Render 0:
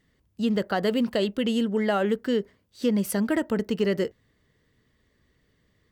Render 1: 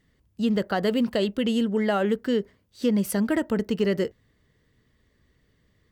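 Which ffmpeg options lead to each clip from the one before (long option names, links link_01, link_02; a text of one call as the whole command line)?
ffmpeg -i in.wav -af "lowshelf=frequency=140:gain=4" out.wav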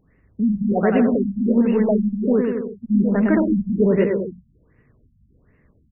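ffmpeg -i in.wav -af "aeval=exprs='0.251*(cos(1*acos(clip(val(0)/0.251,-1,1)))-cos(1*PI/2))+0.0141*(cos(5*acos(clip(val(0)/0.251,-1,1)))-cos(5*PI/2))':channel_layout=same,aecho=1:1:110|198|268.4|324.7|369.8:0.631|0.398|0.251|0.158|0.1,afftfilt=real='re*lt(b*sr/1024,210*pow(2900/210,0.5+0.5*sin(2*PI*1.3*pts/sr)))':imag='im*lt(b*sr/1024,210*pow(2900/210,0.5+0.5*sin(2*PI*1.3*pts/sr)))':win_size=1024:overlap=0.75,volume=4.5dB" out.wav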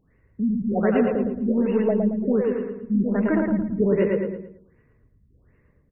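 ffmpeg -i in.wav -af "aecho=1:1:112|224|336|448:0.596|0.208|0.073|0.0255,volume=-4dB" out.wav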